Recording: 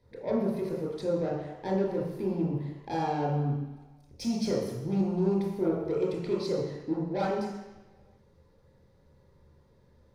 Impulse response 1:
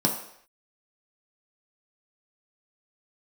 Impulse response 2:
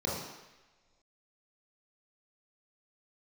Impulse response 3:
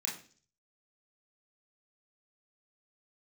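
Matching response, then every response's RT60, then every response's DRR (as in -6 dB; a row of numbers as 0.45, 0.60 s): 2; not exponential, not exponential, 0.45 s; 0.0, -5.5, -4.0 dB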